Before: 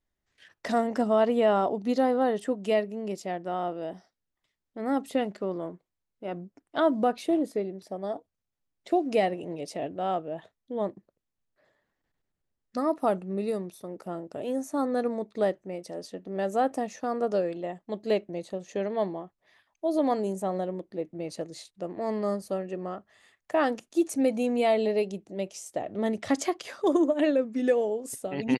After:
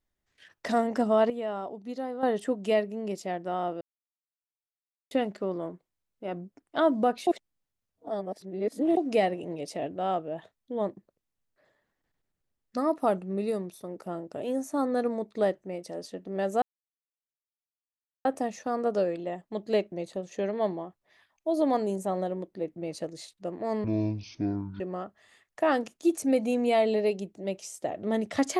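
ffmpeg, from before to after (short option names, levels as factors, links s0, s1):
-filter_complex "[0:a]asplit=10[s0][s1][s2][s3][s4][s5][s6][s7][s8][s9];[s0]atrim=end=1.302[s10];[s1]atrim=start=1.298:end=2.232,asetpts=PTS-STARTPTS,volume=0.299[s11];[s2]atrim=start=2.228:end=3.81,asetpts=PTS-STARTPTS,afade=t=out:st=1.578:d=0.004:c=hsin[s12];[s3]atrim=start=3.81:end=5.11,asetpts=PTS-STARTPTS,volume=0[s13];[s4]atrim=start=5.11:end=7.272,asetpts=PTS-STARTPTS,afade=t=in:d=0.004:c=hsin[s14];[s5]atrim=start=7.268:end=8.972,asetpts=PTS-STARTPTS,areverse[s15];[s6]atrim=start=8.968:end=16.62,asetpts=PTS-STARTPTS,afade=t=out:st=7.648:d=0.004:c=hsin,apad=pad_dur=1.63[s16];[s7]atrim=start=16.62:end=22.214,asetpts=PTS-STARTPTS,afade=t=in:d=0.004:c=hsin[s17];[s8]atrim=start=22.21:end=22.72,asetpts=PTS-STARTPTS,asetrate=23373,aresample=44100[s18];[s9]atrim=start=22.716[s19];[s10][s11]acrossfade=d=0.004:c1=hsin:c2=hsin[s20];[s12][s13][s14]concat=n=3:v=0:a=1[s21];[s20][s21]acrossfade=d=0.004:c1=hsin:c2=hsin[s22];[s22][s15]acrossfade=d=0.004:c1=hsin:c2=hsin[s23];[s16][s17]concat=n=2:v=0:a=1[s24];[s23][s24]acrossfade=d=0.004:c1=hsin:c2=hsin[s25];[s25][s18]acrossfade=d=0.004:c1=hsin:c2=hsin[s26];[s26][s19]acrossfade=d=0.004:c1=hsin:c2=hsin"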